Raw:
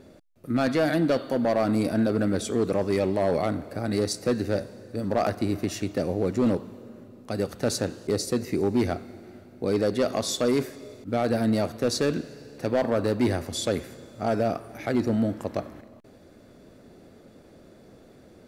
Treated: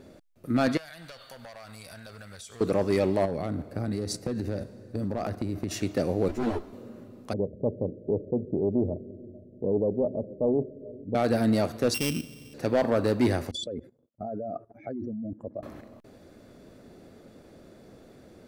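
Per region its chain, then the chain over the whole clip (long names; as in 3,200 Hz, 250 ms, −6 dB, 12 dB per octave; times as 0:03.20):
0:00.77–0:02.61: guitar amp tone stack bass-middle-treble 10-0-10 + downward compressor 10 to 1, threshold −40 dBFS
0:03.25–0:05.71: noise gate −35 dBFS, range −8 dB + low-shelf EQ 330 Hz +9.5 dB + downward compressor 10 to 1, threshold −26 dBFS
0:06.28–0:06.73: lower of the sound and its delayed copy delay 3 ms + string-ensemble chorus
0:07.33–0:11.15: Chebyshev low-pass with heavy ripple 630 Hz, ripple 3 dB + single-tap delay 441 ms −22 dB + highs frequency-modulated by the lows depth 0.17 ms
0:11.94–0:12.54: samples sorted by size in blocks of 16 samples + flat-topped bell 890 Hz −10 dB 2.9 octaves
0:13.51–0:15.63: expanding power law on the bin magnitudes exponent 2.1 + noise gate −43 dBFS, range −43 dB + output level in coarse steps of 17 dB
whole clip: no processing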